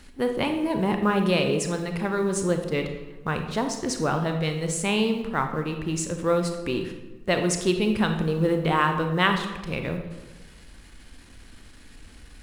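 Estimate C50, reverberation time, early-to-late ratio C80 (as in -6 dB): 7.0 dB, 1.2 s, 9.5 dB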